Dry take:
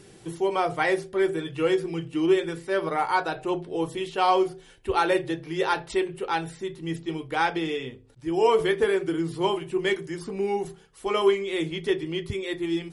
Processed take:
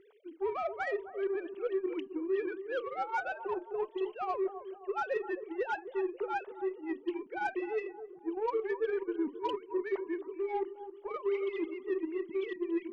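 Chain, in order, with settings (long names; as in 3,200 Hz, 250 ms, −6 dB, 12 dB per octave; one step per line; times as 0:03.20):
three sine waves on the formant tracks
dynamic equaliser 1,500 Hz, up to +3 dB, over −40 dBFS, Q 1.5
reversed playback
downward compressor 6 to 1, threshold −31 dBFS, peak gain reduction 17.5 dB
reversed playback
harmonic generator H 6 −43 dB, 7 −29 dB, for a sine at −22.5 dBFS
bucket-brigade delay 266 ms, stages 2,048, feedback 47%, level −12 dB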